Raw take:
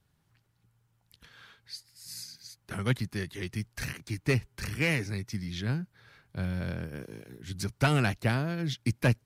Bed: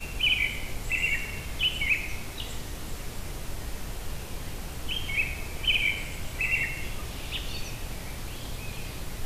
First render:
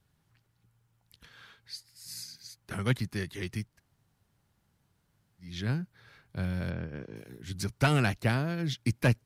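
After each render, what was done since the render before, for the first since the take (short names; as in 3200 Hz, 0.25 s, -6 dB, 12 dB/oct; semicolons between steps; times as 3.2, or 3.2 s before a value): 3.68–5.5 room tone, crossfade 0.24 s; 6.7–7.16 air absorption 170 m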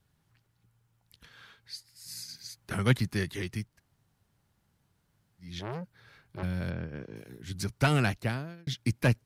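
2.29–3.42 gain +3.5 dB; 5.59–6.43 core saturation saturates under 970 Hz; 8.08–8.67 fade out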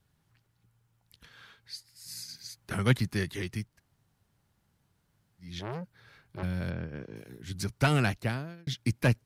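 nothing audible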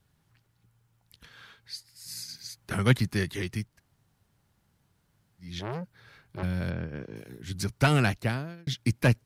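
gain +2.5 dB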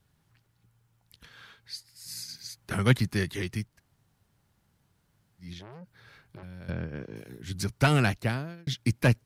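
5.53–6.69 compressor 10:1, threshold -40 dBFS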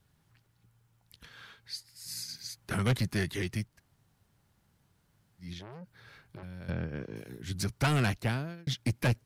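soft clip -22 dBFS, distortion -10 dB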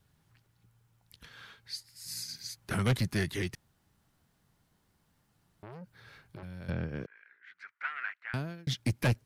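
3.55–5.63 room tone; 7.06–8.34 Butterworth band-pass 1700 Hz, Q 2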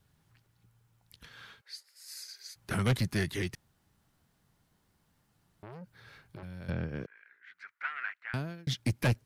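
1.61–2.56 rippled Chebyshev high-pass 380 Hz, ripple 6 dB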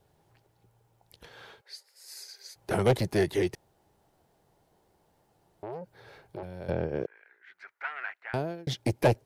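band shelf 550 Hz +12 dB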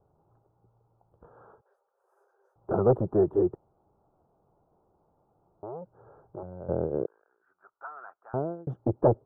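elliptic low-pass 1300 Hz, stop band 40 dB; dynamic EQ 370 Hz, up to +4 dB, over -36 dBFS, Q 1.3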